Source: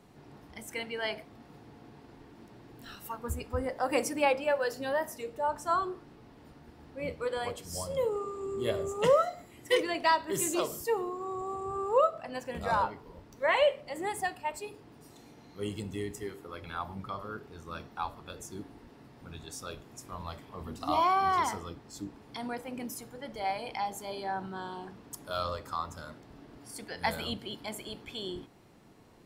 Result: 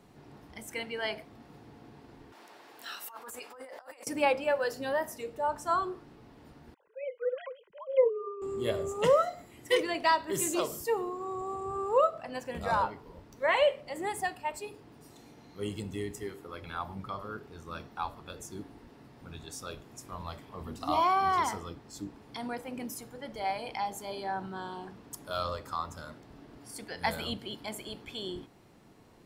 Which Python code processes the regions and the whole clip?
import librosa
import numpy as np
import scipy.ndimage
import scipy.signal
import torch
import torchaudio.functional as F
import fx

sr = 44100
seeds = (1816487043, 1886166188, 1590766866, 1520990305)

y = fx.chain(x, sr, fx.highpass(hz=680.0, slope=12),
    fx.over_compress(threshold_db=-47.0, ratio=-1.0), at=(2.32, 4.07))
y = fx.chain(y, sr, fx.sine_speech(),
    fx.low_shelf(hz=480.0, db=-4.0),
    fx.comb(ms=2.0, depth=0.8), at=(6.74, 8.42))